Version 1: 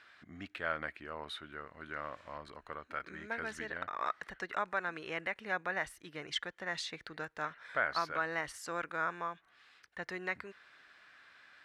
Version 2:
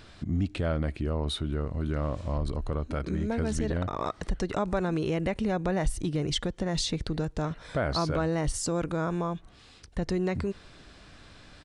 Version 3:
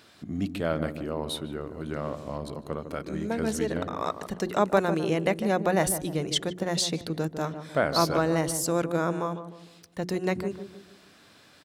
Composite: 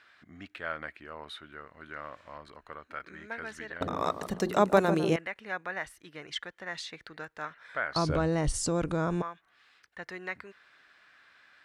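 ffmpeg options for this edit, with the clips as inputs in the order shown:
-filter_complex "[0:a]asplit=3[s0][s1][s2];[s0]atrim=end=3.812[s3];[2:a]atrim=start=3.808:end=5.162[s4];[s1]atrim=start=5.158:end=7.962[s5];[1:a]atrim=start=7.958:end=9.222[s6];[s2]atrim=start=9.218[s7];[s3][s4]acrossfade=d=0.004:c1=hsin:c2=hsin[s8];[s8][s5]acrossfade=d=0.004:c1=hsin:c2=hsin[s9];[s9][s6]acrossfade=d=0.004:c1=hsin:c2=hsin[s10];[s10][s7]acrossfade=d=0.004:c1=hsin:c2=hsin"

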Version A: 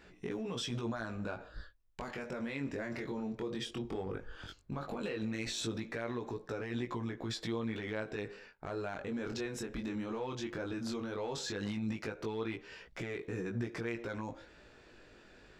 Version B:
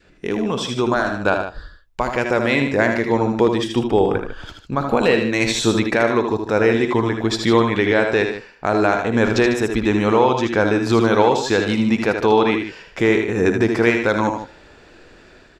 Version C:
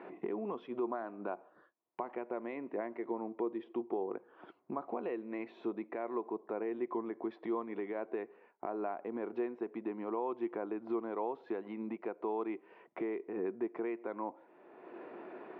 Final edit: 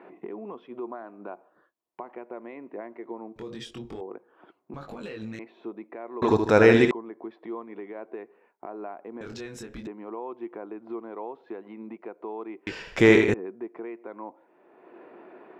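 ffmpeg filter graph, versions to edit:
-filter_complex "[0:a]asplit=3[s0][s1][s2];[1:a]asplit=2[s3][s4];[2:a]asplit=6[s5][s6][s7][s8][s9][s10];[s5]atrim=end=3.362[s11];[s0]atrim=start=3.358:end=4.012[s12];[s6]atrim=start=4.008:end=4.742[s13];[s1]atrim=start=4.738:end=5.392[s14];[s7]atrim=start=5.388:end=6.222[s15];[s3]atrim=start=6.218:end=6.912[s16];[s8]atrim=start=6.908:end=9.212[s17];[s2]atrim=start=9.208:end=9.872[s18];[s9]atrim=start=9.868:end=12.672[s19];[s4]atrim=start=12.668:end=13.342[s20];[s10]atrim=start=13.338[s21];[s11][s12]acrossfade=d=0.004:c1=hsin:c2=hsin[s22];[s22][s13]acrossfade=d=0.004:c1=hsin:c2=hsin[s23];[s23][s14]acrossfade=d=0.004:c1=hsin:c2=hsin[s24];[s24][s15]acrossfade=d=0.004:c1=hsin:c2=hsin[s25];[s25][s16]acrossfade=d=0.004:c1=hsin:c2=hsin[s26];[s26][s17]acrossfade=d=0.004:c1=hsin:c2=hsin[s27];[s27][s18]acrossfade=d=0.004:c1=hsin:c2=hsin[s28];[s28][s19]acrossfade=d=0.004:c1=hsin:c2=hsin[s29];[s29][s20]acrossfade=d=0.004:c1=hsin:c2=hsin[s30];[s30][s21]acrossfade=d=0.004:c1=hsin:c2=hsin"

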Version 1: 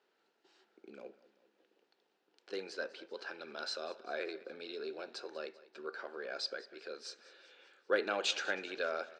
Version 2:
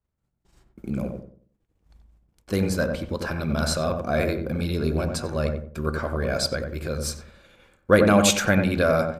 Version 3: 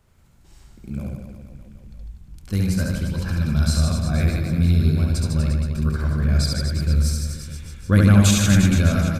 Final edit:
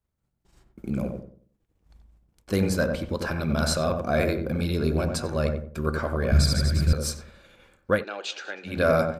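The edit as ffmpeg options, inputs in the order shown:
-filter_complex "[1:a]asplit=3[s0][s1][s2];[s0]atrim=end=6.322[s3];[2:a]atrim=start=6.318:end=6.932[s4];[s1]atrim=start=6.928:end=8.05[s5];[0:a]atrim=start=7.81:end=8.87[s6];[s2]atrim=start=8.63[s7];[s3][s4]acrossfade=d=0.004:c1=hsin:c2=hsin[s8];[s8][s5]acrossfade=d=0.004:c1=hsin:c2=hsin[s9];[s9][s6]acrossfade=d=0.24:c1=tri:c2=tri[s10];[s10][s7]acrossfade=d=0.24:c1=tri:c2=tri"

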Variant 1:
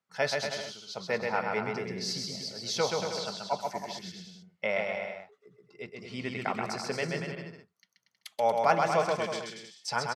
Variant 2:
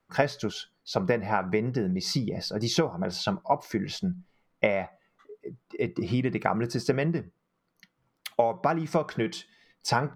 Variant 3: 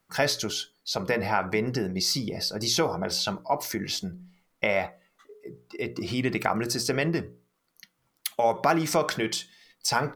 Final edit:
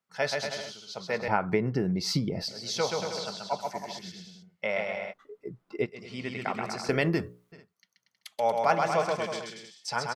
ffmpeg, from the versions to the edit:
-filter_complex "[1:a]asplit=2[s0][s1];[0:a]asplit=4[s2][s3][s4][s5];[s2]atrim=end=1.282[s6];[s0]atrim=start=1.278:end=2.482[s7];[s3]atrim=start=2.478:end=5.14[s8];[s1]atrim=start=5.1:end=5.87[s9];[s4]atrim=start=5.83:end=6.892[s10];[2:a]atrim=start=6.888:end=7.522[s11];[s5]atrim=start=7.518[s12];[s6][s7]acrossfade=d=0.004:c1=hsin:c2=hsin[s13];[s13][s8]acrossfade=d=0.004:c1=hsin:c2=hsin[s14];[s14][s9]acrossfade=d=0.04:c1=tri:c2=tri[s15];[s15][s10]acrossfade=d=0.04:c1=tri:c2=tri[s16];[s16][s11]acrossfade=d=0.004:c1=hsin:c2=hsin[s17];[s17][s12]acrossfade=d=0.004:c1=hsin:c2=hsin"

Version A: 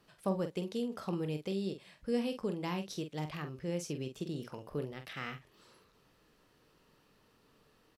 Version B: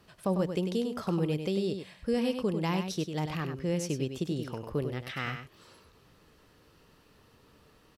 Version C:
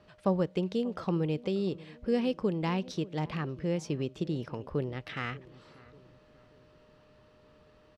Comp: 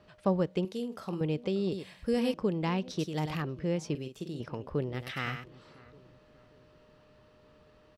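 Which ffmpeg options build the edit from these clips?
-filter_complex "[0:a]asplit=2[s0][s1];[1:a]asplit=3[s2][s3][s4];[2:a]asplit=6[s5][s6][s7][s8][s9][s10];[s5]atrim=end=0.652[s11];[s0]atrim=start=0.648:end=1.212[s12];[s6]atrim=start=1.208:end=1.722[s13];[s2]atrim=start=1.718:end=2.342[s14];[s7]atrim=start=2.338:end=2.992[s15];[s3]atrim=start=2.988:end=3.422[s16];[s8]atrim=start=3.418:end=3.952[s17];[s1]atrim=start=3.948:end=4.402[s18];[s9]atrim=start=4.398:end=4.942[s19];[s4]atrim=start=4.938:end=5.442[s20];[s10]atrim=start=5.438[s21];[s11][s12]acrossfade=d=0.004:c1=hsin:c2=hsin[s22];[s22][s13]acrossfade=d=0.004:c1=hsin:c2=hsin[s23];[s23][s14]acrossfade=d=0.004:c1=hsin:c2=hsin[s24];[s24][s15]acrossfade=d=0.004:c1=hsin:c2=hsin[s25];[s25][s16]acrossfade=d=0.004:c1=hsin:c2=hsin[s26];[s26][s17]acrossfade=d=0.004:c1=hsin:c2=hsin[s27];[s27][s18]acrossfade=d=0.004:c1=hsin:c2=hsin[s28];[s28][s19]acrossfade=d=0.004:c1=hsin:c2=hsin[s29];[s29][s20]acrossfade=d=0.004:c1=hsin:c2=hsin[s30];[s30][s21]acrossfade=d=0.004:c1=hsin:c2=hsin"

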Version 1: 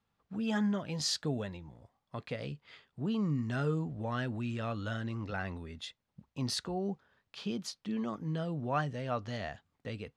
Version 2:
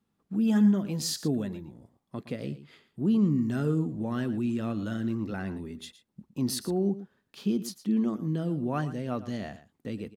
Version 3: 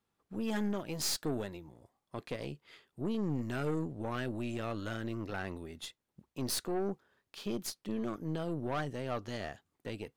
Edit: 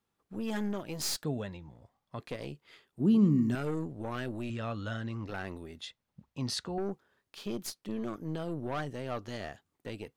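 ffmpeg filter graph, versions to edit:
-filter_complex "[0:a]asplit=3[s0][s1][s2];[2:a]asplit=5[s3][s4][s5][s6][s7];[s3]atrim=end=1.242[s8];[s0]atrim=start=1.238:end=2.202[s9];[s4]atrim=start=2.198:end=3.002[s10];[1:a]atrim=start=2.998:end=3.552[s11];[s5]atrim=start=3.548:end=4.502[s12];[s1]atrim=start=4.498:end=5.272[s13];[s6]atrim=start=5.268:end=5.812[s14];[s2]atrim=start=5.808:end=6.782[s15];[s7]atrim=start=6.778[s16];[s8][s9]acrossfade=d=0.004:c1=hsin:c2=hsin[s17];[s17][s10]acrossfade=d=0.004:c1=hsin:c2=hsin[s18];[s18][s11]acrossfade=d=0.004:c1=hsin:c2=hsin[s19];[s19][s12]acrossfade=d=0.004:c1=hsin:c2=hsin[s20];[s20][s13]acrossfade=d=0.004:c1=hsin:c2=hsin[s21];[s21][s14]acrossfade=d=0.004:c1=hsin:c2=hsin[s22];[s22][s15]acrossfade=d=0.004:c1=hsin:c2=hsin[s23];[s23][s16]acrossfade=d=0.004:c1=hsin:c2=hsin"

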